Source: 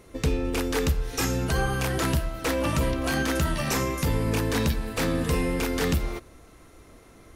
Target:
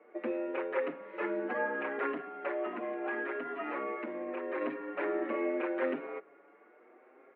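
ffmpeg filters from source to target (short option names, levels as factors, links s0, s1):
-filter_complex "[0:a]asettb=1/sr,asplit=3[s0][s1][s2];[s0]atrim=end=2.424[s3];[s1]atrim=start=2.42:end=4.61,asetpts=PTS-STARTPTS,afade=t=in:d=0.004:c=qsin,afade=t=out:st=2.186:d=0.004:c=qsin,acompressor=threshold=0.0562:ratio=6[s4];[s2]atrim=start=4.606[s5];[s3][s4]acrossfade=d=0.004:c1=hsin:c2=qsin[s6];[s6][s5]acrossfade=d=0.004:c1=qsin:c2=hsin,highpass=f=200:t=q:w=0.5412,highpass=f=200:t=q:w=1.307,lowpass=f=2200:t=q:w=0.5176,lowpass=f=2200:t=q:w=0.7071,lowpass=f=2200:t=q:w=1.932,afreqshift=83,asplit=2[s7][s8];[s8]adelay=6.4,afreqshift=0.75[s9];[s7][s9]amix=inputs=2:normalize=1,volume=0.75"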